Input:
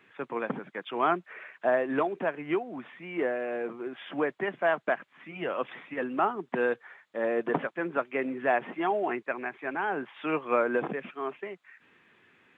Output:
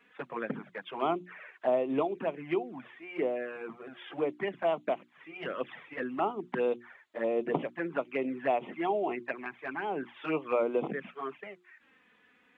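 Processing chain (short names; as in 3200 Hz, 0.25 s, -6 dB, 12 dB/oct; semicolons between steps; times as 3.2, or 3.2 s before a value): notches 60/120/180/240/300/360 Hz; envelope flanger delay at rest 4.3 ms, full sweep at -25.5 dBFS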